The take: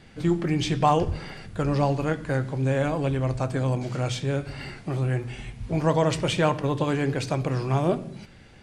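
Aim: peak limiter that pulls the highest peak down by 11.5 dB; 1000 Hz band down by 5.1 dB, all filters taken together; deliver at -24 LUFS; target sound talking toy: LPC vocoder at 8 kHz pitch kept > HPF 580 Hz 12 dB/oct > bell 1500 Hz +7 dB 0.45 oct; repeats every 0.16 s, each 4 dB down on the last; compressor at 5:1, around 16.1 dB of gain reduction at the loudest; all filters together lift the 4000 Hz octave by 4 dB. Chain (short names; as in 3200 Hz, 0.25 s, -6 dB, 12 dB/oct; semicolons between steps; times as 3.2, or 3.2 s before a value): bell 1000 Hz -7.5 dB; bell 4000 Hz +5.5 dB; compressor 5:1, threshold -38 dBFS; limiter -37.5 dBFS; feedback echo 0.16 s, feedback 63%, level -4 dB; LPC vocoder at 8 kHz pitch kept; HPF 580 Hz 12 dB/oct; bell 1500 Hz +7 dB 0.45 oct; gain +26.5 dB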